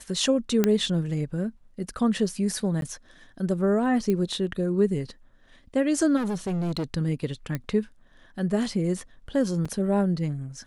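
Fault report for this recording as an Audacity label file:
0.640000	0.640000	click −8 dBFS
2.810000	2.820000	drop-out 12 ms
4.100000	4.100000	click −15 dBFS
6.160000	6.840000	clipping −24.5 dBFS
7.550000	7.550000	click −16 dBFS
9.650000	9.650000	drop-out 5 ms

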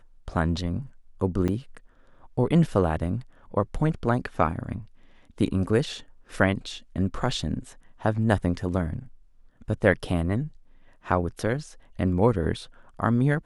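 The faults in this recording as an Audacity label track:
1.480000	1.490000	drop-out 6.4 ms

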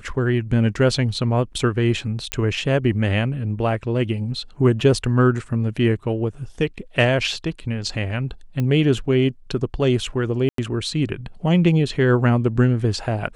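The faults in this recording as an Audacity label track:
2.320000	2.320000	click −5 dBFS
8.600000	8.600000	click −13 dBFS
10.490000	10.580000	drop-out 93 ms

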